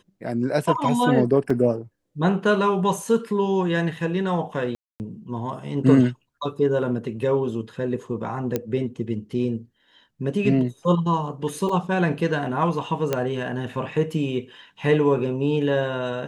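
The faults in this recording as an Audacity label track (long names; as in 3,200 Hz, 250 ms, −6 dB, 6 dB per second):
1.500000	1.500000	drop-out 3.8 ms
4.750000	5.000000	drop-out 249 ms
8.560000	8.560000	click −10 dBFS
11.690000	11.690000	drop-out 3.7 ms
13.130000	13.130000	click −9 dBFS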